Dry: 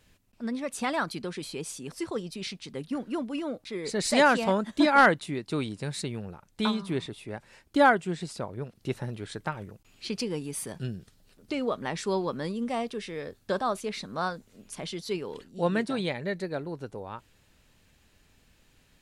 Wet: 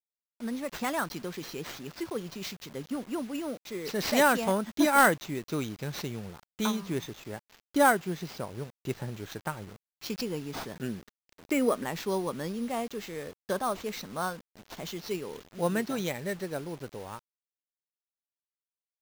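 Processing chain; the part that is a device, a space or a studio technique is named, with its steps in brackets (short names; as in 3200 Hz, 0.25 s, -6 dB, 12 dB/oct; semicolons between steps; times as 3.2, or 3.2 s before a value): 10.75–11.84 graphic EQ 125/250/500/2000/4000/8000 Hz -7/+7/+4/+12/-9/+7 dB; early 8-bit sampler (sample-rate reducer 9900 Hz, jitter 0%; bit-crush 8-bit); gain -2 dB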